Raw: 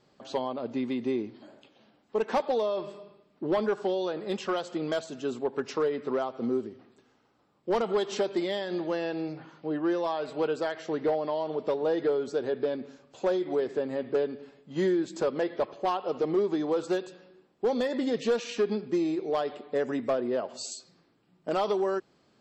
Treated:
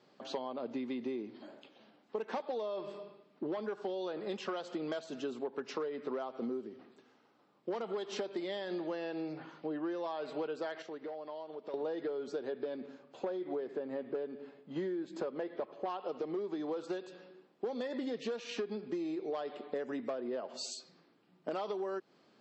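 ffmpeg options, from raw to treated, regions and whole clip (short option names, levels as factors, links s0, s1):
-filter_complex "[0:a]asettb=1/sr,asplit=3[s0][s1][s2];[s0]atrim=end=10.824[s3];[s1]atrim=start=10.82:end=11.74,asetpts=PTS-STARTPTS,afade=t=in:d=0.004:c=qsin,afade=t=out:st=0.916:d=0.004:c=qsin,lowshelf=f=200:g=-6.5,agate=range=0.447:threshold=0.0251:ratio=16:release=100:detection=peak,acompressor=threshold=0.00891:ratio=5:attack=3.2:release=140:knee=1:detection=peak[s4];[s2]atrim=start=11.736[s5];[s3][s4]acrossfade=d=0.004:c1=hsin:c2=qsin[s6];[s6][s5]acrossfade=d=0.004:c1=qsin:c2=hsin,asettb=1/sr,asplit=3[s7][s8][s9];[s7]atrim=end=12.864[s10];[s8]atrim=start=12.86:end=15.9,asetpts=PTS-STARTPTS,afade=t=in:d=0.004:c=qsin,afade=t=out:st=3.036:d=0.004:c=qsin,highshelf=f=3100:g=-8.5,bandreject=f=5700:w=15[s11];[s9]atrim=start=15.896[s12];[s10][s11]acrossfade=d=0.004:c1=hsin:c2=qsin[s13];[s13][s12]acrossfade=d=0.004:c1=qsin:c2=hsin,acrossover=split=150 6900:gain=0.0891 1 0.0891[s14][s15][s16];[s14][s15][s16]amix=inputs=3:normalize=0,acompressor=threshold=0.0178:ratio=6"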